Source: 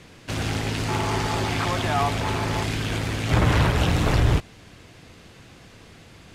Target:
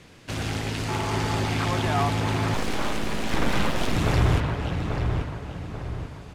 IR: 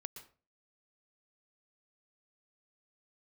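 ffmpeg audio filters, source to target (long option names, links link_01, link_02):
-filter_complex "[0:a]asplit=2[link_01][link_02];[link_02]adelay=838,lowpass=frequency=2300:poles=1,volume=-4.5dB,asplit=2[link_03][link_04];[link_04]adelay=838,lowpass=frequency=2300:poles=1,volume=0.45,asplit=2[link_05][link_06];[link_06]adelay=838,lowpass=frequency=2300:poles=1,volume=0.45,asplit=2[link_07][link_08];[link_08]adelay=838,lowpass=frequency=2300:poles=1,volume=0.45,asplit=2[link_09][link_10];[link_10]adelay=838,lowpass=frequency=2300:poles=1,volume=0.45,asplit=2[link_11][link_12];[link_12]adelay=838,lowpass=frequency=2300:poles=1,volume=0.45[link_13];[link_01][link_03][link_05][link_07][link_09][link_11][link_13]amix=inputs=7:normalize=0,asettb=1/sr,asplit=3[link_14][link_15][link_16];[link_14]atrim=end=2.544[link_17];[link_15]atrim=start=2.54:end=3.96,asetpts=PTS-STARTPTS,afade=type=in:duration=0.004:curve=qsin,afade=type=out:start_time=1.416:duration=0.004:curve=qsin,aeval=exprs='abs(val(0))':channel_layout=same[link_18];[link_16]atrim=start=3.956[link_19];[link_17][link_18]acrossfade=duration=0.004:curve1=hsin:curve2=qsin[link_20];[link_20][link_19]acrossfade=duration=0.004:curve1=qsin:curve2=hsin,volume=-2.5dB"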